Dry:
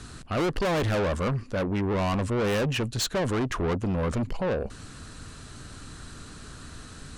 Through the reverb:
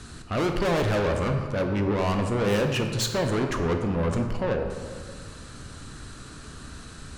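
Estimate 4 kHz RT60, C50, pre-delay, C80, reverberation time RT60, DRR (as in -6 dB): 1.1 s, 5.5 dB, 14 ms, 7.0 dB, 1.9 s, 4.0 dB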